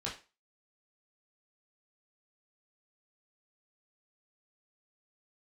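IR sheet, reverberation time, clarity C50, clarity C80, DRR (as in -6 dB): 0.30 s, 9.0 dB, 15.0 dB, -5.5 dB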